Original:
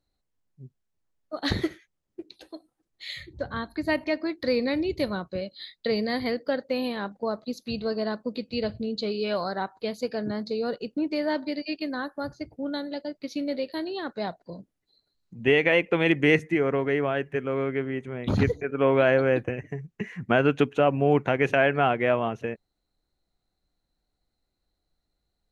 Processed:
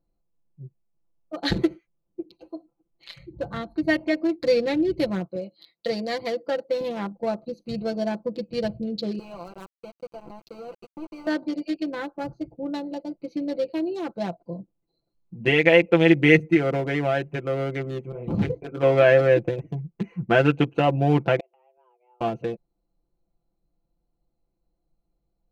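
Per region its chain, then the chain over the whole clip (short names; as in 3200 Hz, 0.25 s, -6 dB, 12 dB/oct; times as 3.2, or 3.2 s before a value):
5.25–6.81 HPF 67 Hz + low shelf 210 Hz -11.5 dB
9.19–11.27 HPF 830 Hz 6 dB/oct + compressor 2:1, threshold -36 dBFS + sample gate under -36 dBFS
18.12–18.83 gate -39 dBFS, range -16 dB + detuned doubles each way 60 cents
21.39–22.21 frequency shift +250 Hz + flipped gate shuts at -21 dBFS, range -40 dB
whole clip: Wiener smoothing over 25 samples; comb 5.9 ms, depth 80%; dynamic EQ 1100 Hz, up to -6 dB, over -44 dBFS, Q 4; gain +2 dB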